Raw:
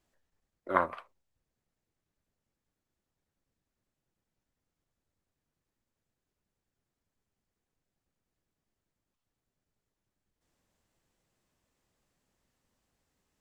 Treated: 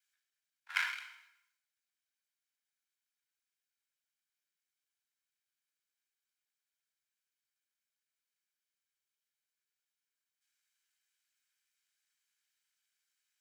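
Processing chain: minimum comb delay 1.3 ms; inverse Chebyshev high-pass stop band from 450 Hz, stop band 60 dB; on a send at -16 dB: reverb RT60 1.0 s, pre-delay 23 ms; on the sum: sustainer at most 74 dB/s

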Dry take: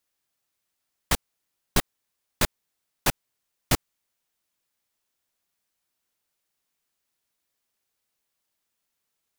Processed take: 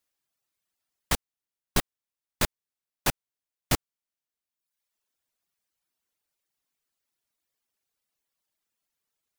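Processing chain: reverb removal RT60 1 s; gain -2 dB

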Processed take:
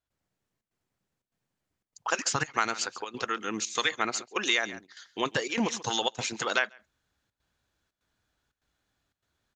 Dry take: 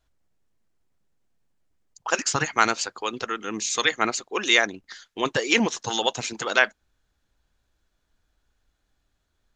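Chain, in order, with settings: LPF 1300 Hz 6 dB/oct; tilt +4.5 dB/oct; echo 0.138 s -19.5 dB; step gate ".xxxxx.xxxxx" 148 bpm -12 dB; bell 100 Hz +12.5 dB 2.8 oct; compressor 3:1, threshold -24 dBFS, peak gain reduction 9 dB

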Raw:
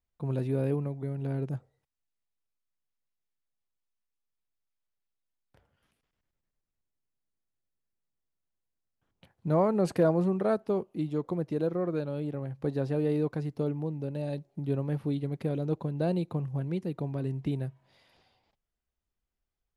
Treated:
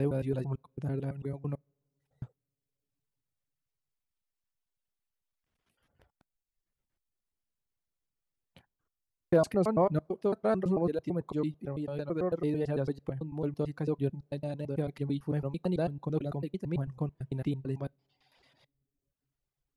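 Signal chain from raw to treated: slices in reverse order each 0.111 s, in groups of 7; two-slope reverb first 0.31 s, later 3.3 s, from -22 dB, DRR 19 dB; reverb removal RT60 0.88 s

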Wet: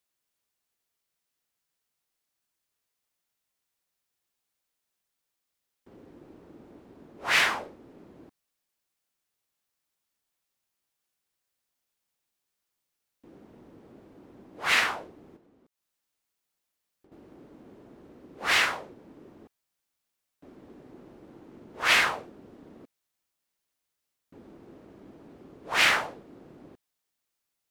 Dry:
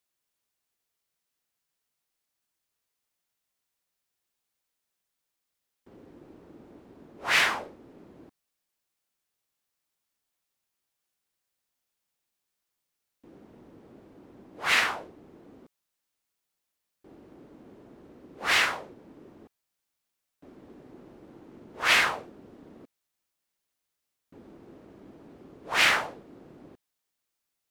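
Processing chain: 15.36–17.12 compressor 12:1, threshold -59 dBFS, peak gain reduction 11 dB

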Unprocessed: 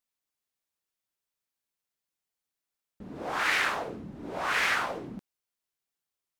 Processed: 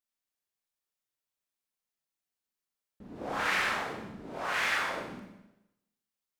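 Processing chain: 3.21–3.74 low shelf 360 Hz +7 dB; Schroeder reverb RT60 0.9 s, combs from 29 ms, DRR 0.5 dB; gain -5.5 dB

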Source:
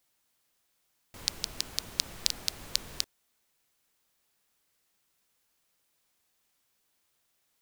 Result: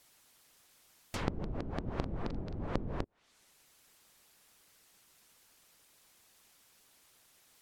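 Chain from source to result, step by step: treble ducked by the level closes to 370 Hz, closed at -38 dBFS; 1.93–2.64 doubler 43 ms -7 dB; harmonic-percussive split percussive +6 dB; gain +7.5 dB

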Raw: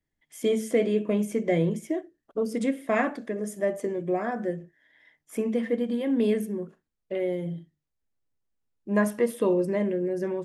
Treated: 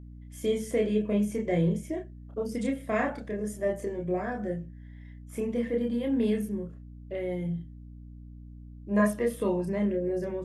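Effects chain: chorus voices 6, 0.23 Hz, delay 29 ms, depth 1.2 ms; hum 60 Hz, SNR 15 dB

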